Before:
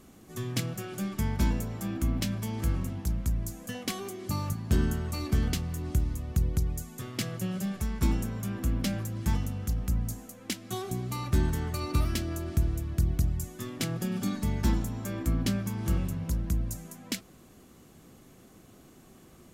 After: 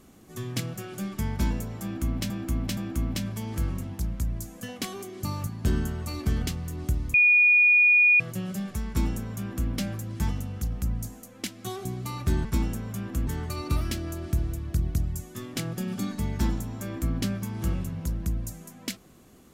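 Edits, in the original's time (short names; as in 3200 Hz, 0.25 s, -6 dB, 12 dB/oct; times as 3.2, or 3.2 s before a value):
1.83–2.3 loop, 3 plays
6.2–7.26 bleep 2450 Hz -15 dBFS
7.94–8.76 copy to 11.51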